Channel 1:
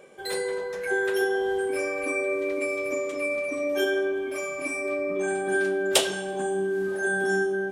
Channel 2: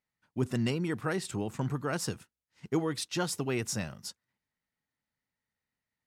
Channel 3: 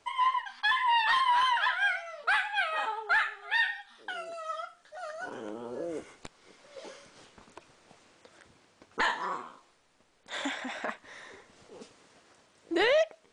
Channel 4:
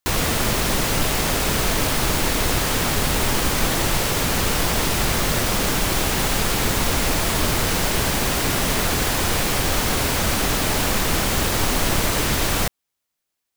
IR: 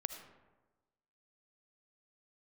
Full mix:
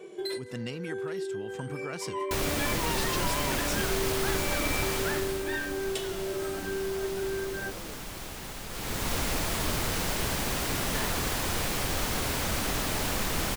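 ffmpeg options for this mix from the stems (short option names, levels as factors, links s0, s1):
-filter_complex "[0:a]equalizer=f=340:w=2.7:g=15,asplit=2[s0][s1];[s1]adelay=2.3,afreqshift=-1[s2];[s0][s2]amix=inputs=2:normalize=1,volume=1.19[s3];[1:a]volume=0.631,asplit=2[s4][s5];[2:a]adelay=1950,volume=0.282[s6];[3:a]adelay=2250,volume=1.06,afade=t=out:st=4.94:d=0.51:silence=0.334965,afade=t=in:st=8.68:d=0.45:silence=0.316228[s7];[s5]apad=whole_len=340403[s8];[s3][s8]sidechaincompress=threshold=0.00708:ratio=8:attack=16:release=1030[s9];[s9][s4]amix=inputs=2:normalize=0,equalizer=f=3500:w=0.6:g=5,acompressor=threshold=0.0282:ratio=10,volume=1[s10];[s6][s7][s10]amix=inputs=3:normalize=0"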